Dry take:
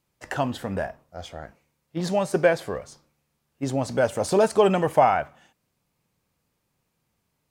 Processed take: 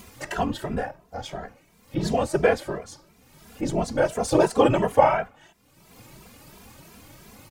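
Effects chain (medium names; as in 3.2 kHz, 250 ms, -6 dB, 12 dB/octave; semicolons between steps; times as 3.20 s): upward compressor, threshold -26 dBFS; whisper effect; endless flanger 2.6 ms +2.9 Hz; trim +3 dB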